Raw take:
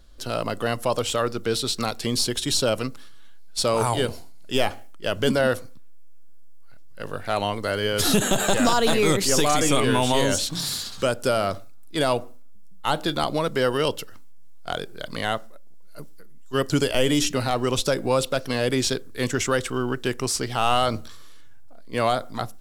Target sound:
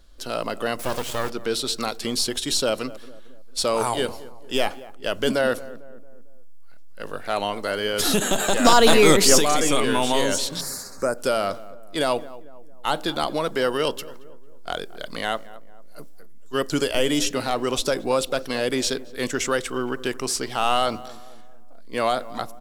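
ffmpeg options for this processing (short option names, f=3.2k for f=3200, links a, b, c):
-filter_complex "[0:a]equalizer=f=110:w=1.4:g=-11,asettb=1/sr,asplit=3[a][b][c];[a]atrim=end=0.794[d];[b]atrim=start=0.79:end=1.3,asetpts=PTS-STARTPTS,afade=t=in:d=0.004:c=qsin,afade=t=out:st=0.506:d=0.004:c=qsin,acrusher=bits=3:dc=4:mix=0:aa=0.000001[e];[c]atrim=start=1.296[f];[d][e]acrossfade=d=0.004:c1=hsin:c2=qsin[g];[g][f]acrossfade=d=0.004:c1=qsin:c2=hsin,asplit=3[h][i][j];[h]afade=t=out:st=8.64:d=0.02[k];[i]acontrast=76,afade=t=in:st=8.64:d=0.02,afade=t=out:st=9.37:d=0.02[l];[j]afade=t=in:st=9.37:d=0.02[m];[k][l][m]amix=inputs=3:normalize=0,asettb=1/sr,asplit=3[n][o][p];[n]atrim=end=10.614[q];[o]atrim=start=10.61:end=11.18,asetpts=PTS-STARTPTS,afade=t=in:d=0.004:c=qsin,afade=t=out:st=0.566:d=0.004:c=qsin,asuperstop=centerf=3200:order=4:qfactor=0.93[r];[p]atrim=start=11.176[s];[q][r]acrossfade=d=0.004:c1=hsin:c2=qsin[t];[t][s]acrossfade=d=0.004:c1=qsin:c2=hsin,asplit=2[u][v];[v]adelay=225,lowpass=f=1.3k:p=1,volume=-17dB,asplit=2[w][x];[x]adelay=225,lowpass=f=1.3k:p=1,volume=0.5,asplit=2[y][z];[z]adelay=225,lowpass=f=1.3k:p=1,volume=0.5,asplit=2[aa][ab];[ab]adelay=225,lowpass=f=1.3k:p=1,volume=0.5[ac];[u][w][y][aa][ac]amix=inputs=5:normalize=0"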